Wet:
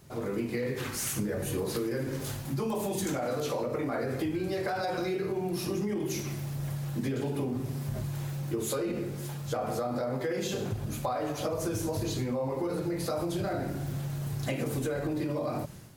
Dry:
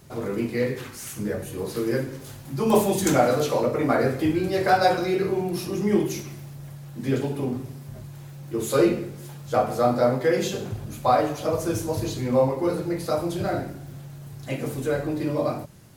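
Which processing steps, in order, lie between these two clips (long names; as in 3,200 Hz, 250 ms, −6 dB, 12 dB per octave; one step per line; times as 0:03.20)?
automatic gain control gain up to 11.5 dB
brickwall limiter −12 dBFS, peak gain reduction 10.5 dB
downward compressor, threshold −24 dBFS, peak gain reduction 8.5 dB
level −4.5 dB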